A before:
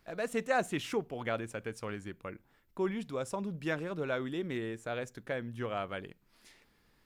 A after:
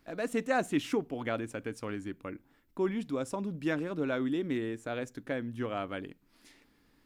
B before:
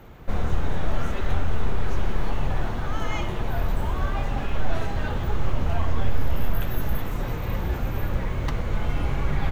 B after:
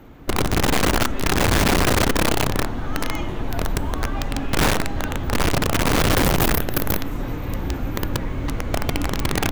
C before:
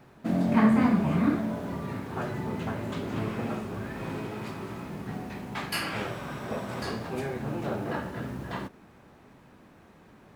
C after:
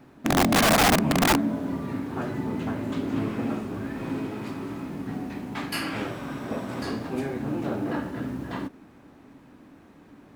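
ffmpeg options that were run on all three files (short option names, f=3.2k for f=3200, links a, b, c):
-af "equalizer=f=280:t=o:w=0.38:g=11.5,aeval=exprs='(mod(5.31*val(0)+1,2)-1)/5.31':c=same"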